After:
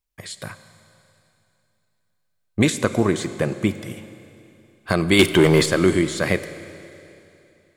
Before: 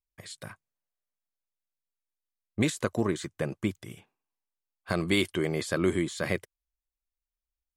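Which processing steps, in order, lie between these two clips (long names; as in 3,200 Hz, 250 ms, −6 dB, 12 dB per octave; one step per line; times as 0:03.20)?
0:05.19–0:05.66: leveller curve on the samples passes 2
four-comb reverb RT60 2.9 s, combs from 32 ms, DRR 12 dB
level +8.5 dB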